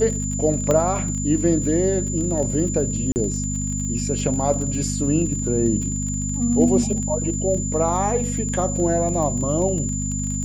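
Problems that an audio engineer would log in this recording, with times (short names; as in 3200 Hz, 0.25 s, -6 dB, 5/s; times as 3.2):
crackle 31/s -28 dBFS
hum 50 Hz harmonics 5 -26 dBFS
tone 7100 Hz -28 dBFS
0.71 pop -8 dBFS
3.12–3.16 gap 39 ms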